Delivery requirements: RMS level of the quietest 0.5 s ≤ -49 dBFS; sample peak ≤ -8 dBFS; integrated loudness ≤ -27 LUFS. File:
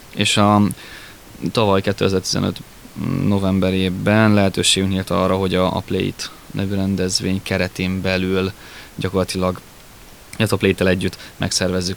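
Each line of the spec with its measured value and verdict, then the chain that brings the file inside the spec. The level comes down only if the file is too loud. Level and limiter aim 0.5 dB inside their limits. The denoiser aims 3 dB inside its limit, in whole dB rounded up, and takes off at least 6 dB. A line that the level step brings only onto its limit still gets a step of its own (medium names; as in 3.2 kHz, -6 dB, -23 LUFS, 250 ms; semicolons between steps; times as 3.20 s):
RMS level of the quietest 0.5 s -42 dBFS: fail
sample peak -2.0 dBFS: fail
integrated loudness -18.5 LUFS: fail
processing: trim -9 dB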